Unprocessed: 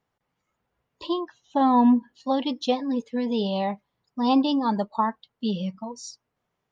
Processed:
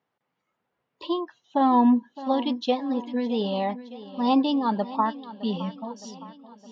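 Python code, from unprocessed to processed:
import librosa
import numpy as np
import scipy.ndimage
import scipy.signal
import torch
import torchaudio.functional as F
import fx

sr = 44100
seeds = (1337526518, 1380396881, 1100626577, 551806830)

y = fx.bandpass_edges(x, sr, low_hz=170.0, high_hz=4400.0)
y = fx.echo_feedback(y, sr, ms=614, feedback_pct=55, wet_db=-16.0)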